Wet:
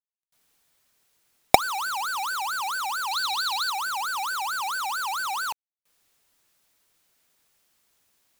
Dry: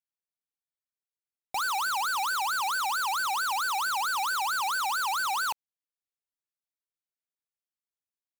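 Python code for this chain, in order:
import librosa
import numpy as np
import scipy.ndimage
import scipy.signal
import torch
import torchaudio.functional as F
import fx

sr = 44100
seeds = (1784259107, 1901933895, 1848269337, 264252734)

y = fx.recorder_agc(x, sr, target_db=-35.0, rise_db_per_s=66.0, max_gain_db=30)
y = fx.peak_eq(y, sr, hz=4000.0, db=14.0, octaves=0.48, at=(3.11, 3.7))
y = fx.quant_companded(y, sr, bits=6)
y = y * librosa.db_to_amplitude(-1.0)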